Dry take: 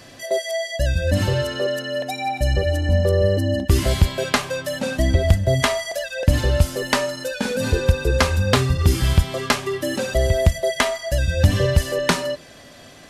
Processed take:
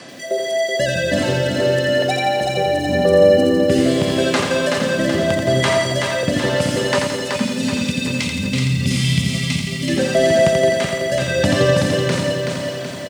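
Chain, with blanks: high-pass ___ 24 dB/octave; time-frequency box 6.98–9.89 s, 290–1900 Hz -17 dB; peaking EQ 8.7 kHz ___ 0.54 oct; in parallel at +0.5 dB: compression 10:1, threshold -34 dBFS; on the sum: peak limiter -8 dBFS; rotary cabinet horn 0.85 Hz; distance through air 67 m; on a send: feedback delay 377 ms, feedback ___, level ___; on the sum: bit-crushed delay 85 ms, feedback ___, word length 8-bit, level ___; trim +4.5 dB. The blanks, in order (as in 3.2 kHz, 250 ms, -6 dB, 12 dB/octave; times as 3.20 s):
150 Hz, +6.5 dB, 50%, -4.5 dB, 55%, -5 dB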